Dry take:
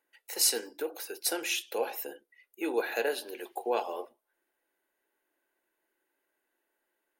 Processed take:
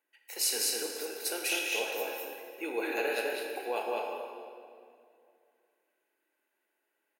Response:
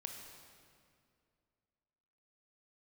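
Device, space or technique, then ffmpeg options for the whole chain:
stadium PA: -filter_complex "[0:a]highpass=frequency=140:poles=1,equalizer=frequency=2500:width_type=o:width=0.38:gain=6,aecho=1:1:201.2|239.1:0.794|0.282[link_01];[1:a]atrim=start_sample=2205[link_02];[link_01][link_02]afir=irnorm=-1:irlink=0"

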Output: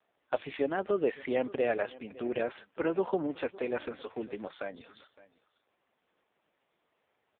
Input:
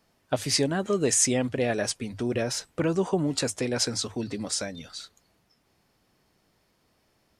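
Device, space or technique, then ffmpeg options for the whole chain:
satellite phone: -af "highpass=380,lowpass=3300,aecho=1:1:561:0.1" -ar 8000 -c:a libopencore_amrnb -b:a 5150

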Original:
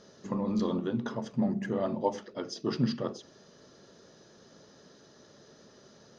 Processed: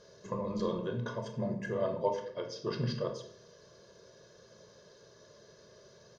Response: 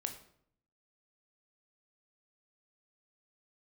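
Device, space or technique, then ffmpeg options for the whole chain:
microphone above a desk: -filter_complex "[0:a]aecho=1:1:1.9:0.79[link_01];[1:a]atrim=start_sample=2205[link_02];[link_01][link_02]afir=irnorm=-1:irlink=0,asettb=1/sr,asplit=3[link_03][link_04][link_05];[link_03]atrim=end=2.084[link_06];[link_04]atrim=start=2.08:end=2.9,asetpts=PTS-STARTPTS,afade=type=in:duration=0.004:curve=qsin,afade=type=out:start_time=0.816:duration=0.004:curve=qsin,lowpass=5400[link_07];[link_05]atrim=start=2.896[link_08];[link_06][link_07]acrossfade=duration=0.004:curve1=hsin:curve2=qsin[link_09];[link_09][link_08]acrossfade=duration=0.004:curve1=qsin:curve2=hsin,volume=-3dB"

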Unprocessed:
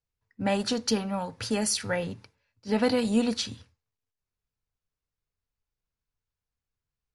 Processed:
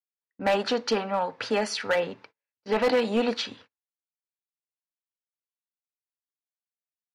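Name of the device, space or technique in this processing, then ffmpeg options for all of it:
walkie-talkie: -af "highpass=400,lowpass=2800,asoftclip=type=hard:threshold=-25dB,agate=range=-26dB:threshold=-59dB:ratio=16:detection=peak,volume=7.5dB"

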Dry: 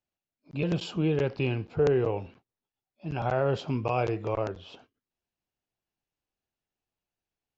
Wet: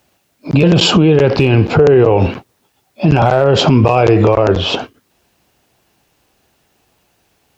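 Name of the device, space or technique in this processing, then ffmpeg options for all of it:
mastering chain: -af "highpass=45,equalizer=frequency=560:width_type=o:width=2.6:gain=2,acompressor=threshold=-29dB:ratio=2.5,asoftclip=type=hard:threshold=-21dB,alimiter=level_in=32dB:limit=-1dB:release=50:level=0:latency=1,volume=-1dB"

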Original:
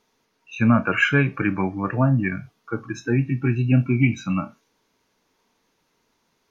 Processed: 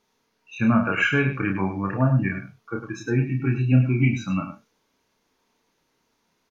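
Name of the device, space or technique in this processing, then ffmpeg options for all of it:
slapback doubling: -filter_complex "[0:a]asplit=3[link_01][link_02][link_03];[link_02]adelay=31,volume=-4dB[link_04];[link_03]adelay=103,volume=-9dB[link_05];[link_01][link_04][link_05]amix=inputs=3:normalize=0,volume=-3.5dB"

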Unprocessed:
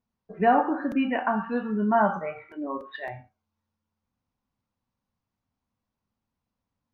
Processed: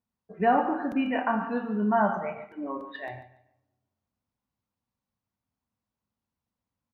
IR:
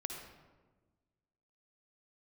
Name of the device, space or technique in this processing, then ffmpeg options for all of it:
keyed gated reverb: -filter_complex "[0:a]highpass=40,asettb=1/sr,asplit=3[link_01][link_02][link_03];[link_01]atrim=end=1.034[link_04];[link_02]atrim=start=1.03:end=1.47,asetpts=PTS-STARTPTS,afade=type=in:duration=0.004:curve=qsin,afade=type=out:start_time=0.436:duration=0.004:curve=qsin,asplit=2[link_05][link_06];[link_06]adelay=27,volume=-7dB[link_07];[link_05][link_07]amix=inputs=2:normalize=0,atrim=end_sample=19404[link_08];[link_03]atrim=start=1.466[link_09];[link_04][link_08]acrossfade=duration=0.004:curve1=hsin:curve2=qsin[link_10];[link_10][link_09]acrossfade=duration=0.004:curve1=qsin:curve2=hsin,aecho=1:1:144|288|432:0.2|0.0539|0.0145,asplit=3[link_11][link_12][link_13];[1:a]atrim=start_sample=2205[link_14];[link_12][link_14]afir=irnorm=-1:irlink=0[link_15];[link_13]apad=whole_len=324998[link_16];[link_15][link_16]sidechaingate=range=-11dB:threshold=-41dB:ratio=16:detection=peak,volume=-6dB[link_17];[link_11][link_17]amix=inputs=2:normalize=0,volume=-5dB"

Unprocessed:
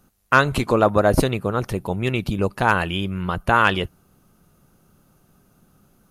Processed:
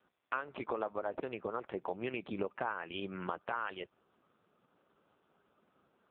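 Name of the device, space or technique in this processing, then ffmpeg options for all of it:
voicemail: -af "highpass=380,lowpass=2700,acompressor=threshold=-28dB:ratio=12,volume=-3.5dB" -ar 8000 -c:a libopencore_amrnb -b:a 5150

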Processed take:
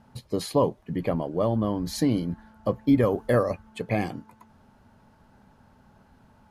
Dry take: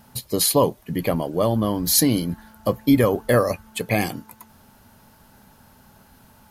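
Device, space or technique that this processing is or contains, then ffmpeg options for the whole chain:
through cloth: -filter_complex "[0:a]lowpass=8800,highshelf=frequency=2700:gain=-13,asettb=1/sr,asplit=3[link_01][link_02][link_03];[link_01]atrim=end=3.034[link_04];[link_02]atrim=start=3.03:end=3.43,asetpts=PTS-STARTPTS,afade=type=in:duration=0.004:curve=qsin,afade=type=out:start_time=0.396:duration=0.004:curve=qsin,highshelf=frequency=7200:gain=10[link_05];[link_03]atrim=start=3.426[link_06];[link_04][link_05]acrossfade=duration=0.004:curve1=hsin:curve2=qsin[link_07];[link_07][link_06]acrossfade=duration=0.004:curve1=qsin:curve2=hsin,volume=-3.5dB"

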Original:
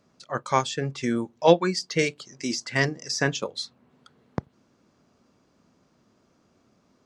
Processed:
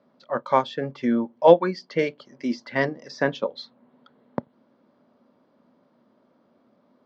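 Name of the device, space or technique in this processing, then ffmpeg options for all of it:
kitchen radio: -filter_complex "[0:a]asettb=1/sr,asplit=3[link_01][link_02][link_03];[link_01]atrim=end=0.774[link_04];[link_02]atrim=start=0.77:end=2.58,asetpts=PTS-STARTPTS,afade=type=in:duration=0.004:curve=qsin,afade=type=out:start_time=1.806:duration=0.004:curve=qsin,bandreject=frequency=3800:width=9.5[link_05];[link_03]atrim=start=2.576[link_06];[link_04][link_05]acrossfade=duration=0.004:curve1=hsin:curve2=qsin[link_07];[link_07][link_06]acrossfade=duration=0.004:curve1=qsin:curve2=hsin,highpass=170,equalizer=frequency=240:width_type=q:width=4:gain=7,equalizer=frequency=570:width_type=q:width=4:gain=9,equalizer=frequency=930:width_type=q:width=4:gain=5,equalizer=frequency=2600:width_type=q:width=4:gain=-7,lowpass=frequency=3800:width=0.5412,lowpass=frequency=3800:width=1.3066,volume=-1dB"

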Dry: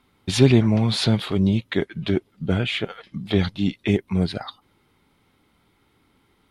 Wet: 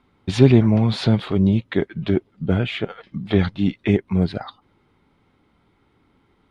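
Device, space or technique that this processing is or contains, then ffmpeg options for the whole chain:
through cloth: -filter_complex "[0:a]asettb=1/sr,asplit=3[link_01][link_02][link_03];[link_01]atrim=end=3.224[link_04];[link_02]atrim=start=3.22:end=4.08,asetpts=PTS-STARTPTS,afade=type=in:duration=0.004:curve=qsin,afade=type=out:start_time=0.856:duration=0.004:curve=qsin,equalizer=frequency=1600:width=0.97:gain=3.5[link_05];[link_03]atrim=start=4.076[link_06];[link_04][link_05]acrossfade=duration=0.004:curve1=hsin:curve2=qsin[link_07];[link_07][link_06]acrossfade=duration=0.004:curve1=qsin:curve2=hsin,lowpass=8900,highshelf=frequency=2800:gain=-11,volume=2.5dB"

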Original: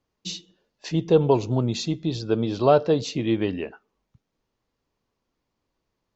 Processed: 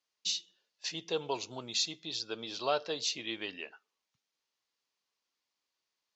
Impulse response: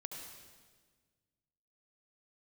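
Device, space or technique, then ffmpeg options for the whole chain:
piezo pickup straight into a mixer: -af "lowpass=5400,aderivative,volume=7dB"

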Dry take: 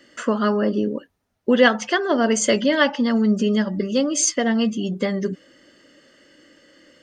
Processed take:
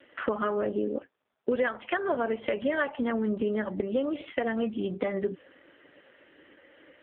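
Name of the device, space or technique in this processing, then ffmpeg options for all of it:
voicemail: -af "highpass=350,lowpass=3100,acompressor=threshold=-27dB:ratio=6,volume=3dB" -ar 8000 -c:a libopencore_amrnb -b:a 5150

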